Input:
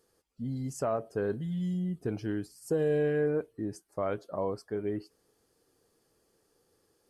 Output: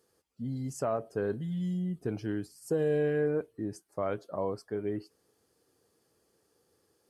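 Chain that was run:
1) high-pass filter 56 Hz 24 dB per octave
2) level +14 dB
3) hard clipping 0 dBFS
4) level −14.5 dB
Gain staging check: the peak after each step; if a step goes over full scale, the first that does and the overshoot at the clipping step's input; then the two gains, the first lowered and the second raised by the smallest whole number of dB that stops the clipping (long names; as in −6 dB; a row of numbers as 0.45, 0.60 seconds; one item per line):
−18.5, −4.5, −4.5, −19.0 dBFS
no step passes full scale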